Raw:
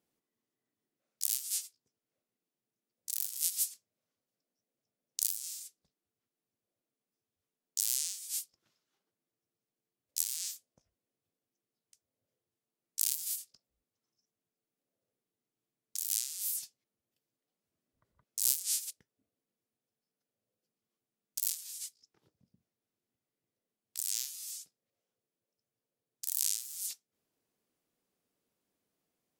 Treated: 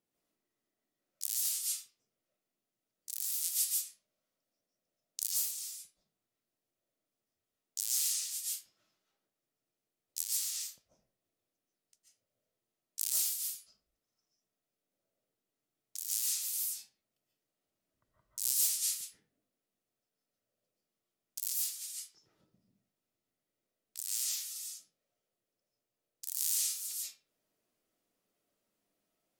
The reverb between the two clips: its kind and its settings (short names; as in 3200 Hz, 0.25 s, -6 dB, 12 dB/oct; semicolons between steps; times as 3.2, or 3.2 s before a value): digital reverb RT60 0.43 s, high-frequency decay 0.7×, pre-delay 0.1 s, DRR -5.5 dB; gain -4.5 dB